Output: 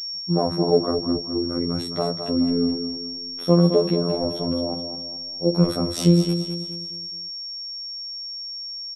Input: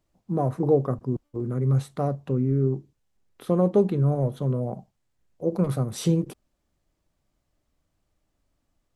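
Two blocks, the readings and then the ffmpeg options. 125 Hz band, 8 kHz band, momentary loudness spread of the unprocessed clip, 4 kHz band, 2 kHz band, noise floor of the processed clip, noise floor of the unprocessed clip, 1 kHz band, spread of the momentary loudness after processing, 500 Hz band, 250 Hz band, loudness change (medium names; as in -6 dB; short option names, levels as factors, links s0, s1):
0.0 dB, +5.0 dB, 9 LU, +22.5 dB, no reading, -34 dBFS, -76 dBFS, +3.0 dB, 12 LU, +3.5 dB, +5.5 dB, +2.0 dB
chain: -af "aeval=exprs='val(0)+0.02*sin(2*PI*5500*n/s)':c=same,afftfilt=real='hypot(re,im)*cos(PI*b)':imag='0':win_size=2048:overlap=0.75,aecho=1:1:212|424|636|848|1060:0.376|0.165|0.0728|0.032|0.0141,volume=2.37"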